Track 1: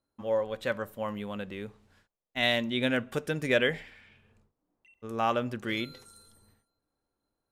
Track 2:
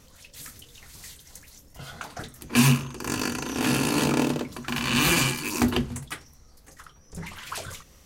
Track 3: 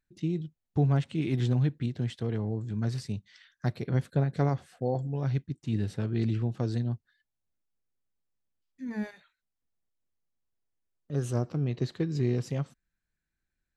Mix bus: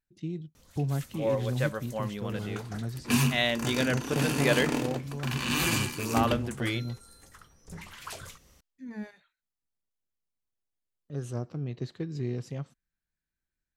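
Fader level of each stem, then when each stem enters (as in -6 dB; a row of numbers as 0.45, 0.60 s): -0.5, -6.0, -5.0 dB; 0.95, 0.55, 0.00 s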